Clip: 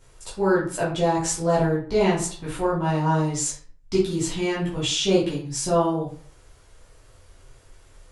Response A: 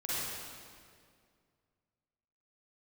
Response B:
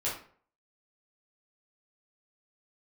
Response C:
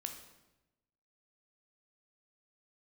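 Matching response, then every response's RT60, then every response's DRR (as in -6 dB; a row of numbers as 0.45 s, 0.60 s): B; 2.1 s, 0.50 s, 1.0 s; -10.5 dB, -8.5 dB, 4.5 dB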